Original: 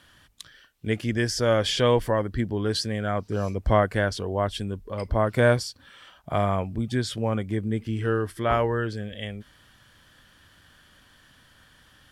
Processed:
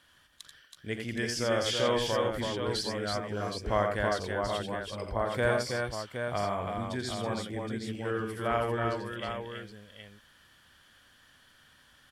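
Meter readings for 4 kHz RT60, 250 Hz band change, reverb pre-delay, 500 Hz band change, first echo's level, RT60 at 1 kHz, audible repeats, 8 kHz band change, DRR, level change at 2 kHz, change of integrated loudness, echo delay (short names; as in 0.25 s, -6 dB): none, -7.5 dB, none, -5.5 dB, -15.5 dB, none, 4, -3.0 dB, none, -3.5 dB, -6.0 dB, 44 ms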